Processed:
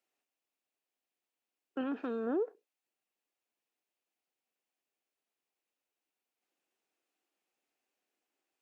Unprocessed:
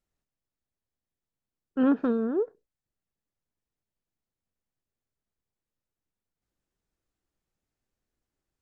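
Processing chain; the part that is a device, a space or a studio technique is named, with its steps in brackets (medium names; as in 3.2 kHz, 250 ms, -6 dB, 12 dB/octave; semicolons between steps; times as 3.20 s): laptop speaker (high-pass 280 Hz 24 dB/octave; peaking EQ 750 Hz +5.5 dB 0.33 oct; peaking EQ 2.6 kHz +8 dB 0.56 oct; peak limiter -26 dBFS, peak gain reduction 9.5 dB); 1.81–2.27 s: peaking EQ 610 Hz -5.5 dB 1.8 oct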